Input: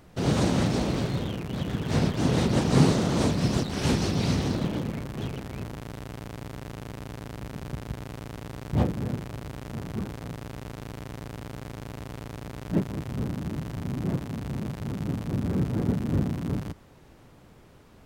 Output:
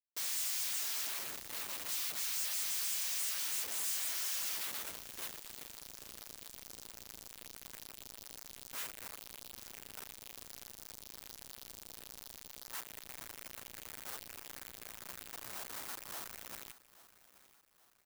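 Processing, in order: spectral gate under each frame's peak -30 dB weak; Schmitt trigger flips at -50.5 dBFS; RIAA curve recording; on a send: feedback echo 0.829 s, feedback 45%, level -17.5 dB; on the sum: gain +1 dB

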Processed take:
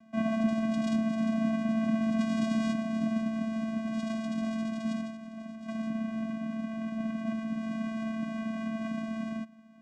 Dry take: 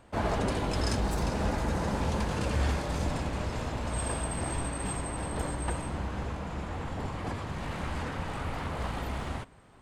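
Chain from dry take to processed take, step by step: 2.18–2.73 high shelf 2700 Hz +9.5 dB; vocoder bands 4, square 222 Hz; 5–5.8 dip -9.5 dB, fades 0.18 s; gain +3.5 dB

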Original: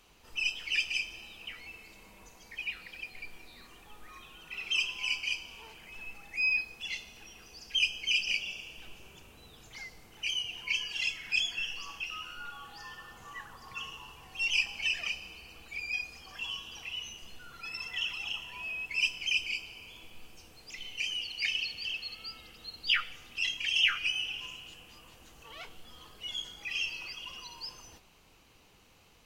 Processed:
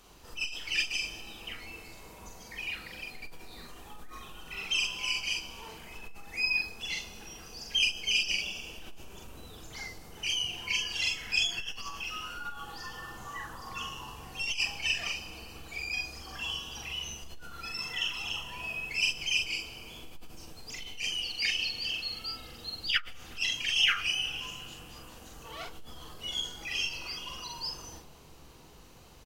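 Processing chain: bell 2500 Hz -7 dB 0.85 oct; doubler 43 ms -3 dB; on a send: dark delay 0.361 s, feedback 75%, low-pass 480 Hz, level -9 dB; on the sum: core saturation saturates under 200 Hz; gain +5.5 dB

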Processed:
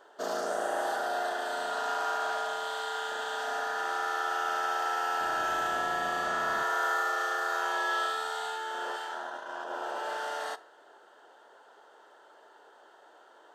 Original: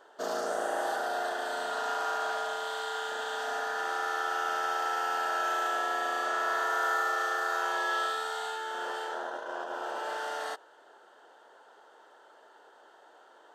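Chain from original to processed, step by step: 5.2–6.63 octaver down 1 oct, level -2 dB; 8.96–9.65 bell 470 Hz -8 dB 0.92 oct; reverb RT60 0.55 s, pre-delay 3 ms, DRR 14.5 dB

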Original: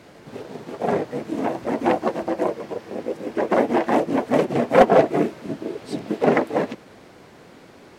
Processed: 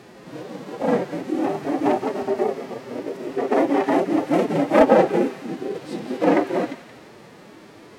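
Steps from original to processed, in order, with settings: harmonic-percussive split percussive -11 dB; thin delay 0.175 s, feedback 52%, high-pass 1500 Hz, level -10.5 dB; formant-preserving pitch shift +3 st; gain +5.5 dB

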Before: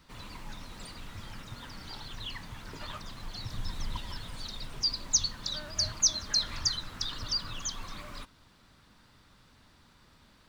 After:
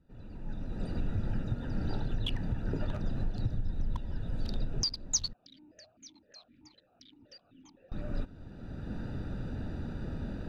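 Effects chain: Wiener smoothing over 41 samples; recorder AGC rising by 20 dB/s; 5.33–7.92 vowel sequencer 7.8 Hz; gain -4 dB

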